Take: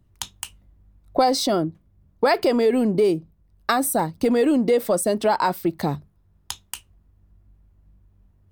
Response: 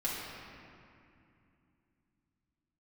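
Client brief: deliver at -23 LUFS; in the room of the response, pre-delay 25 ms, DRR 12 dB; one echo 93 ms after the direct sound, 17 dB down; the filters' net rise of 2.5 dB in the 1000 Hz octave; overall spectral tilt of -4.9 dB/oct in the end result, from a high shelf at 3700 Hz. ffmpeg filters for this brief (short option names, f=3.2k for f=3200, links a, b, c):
-filter_complex "[0:a]equalizer=f=1k:t=o:g=4,highshelf=f=3.7k:g=-8.5,aecho=1:1:93:0.141,asplit=2[a][b];[1:a]atrim=start_sample=2205,adelay=25[c];[b][c]afir=irnorm=-1:irlink=0,volume=-17.5dB[d];[a][d]amix=inputs=2:normalize=0,volume=-2.5dB"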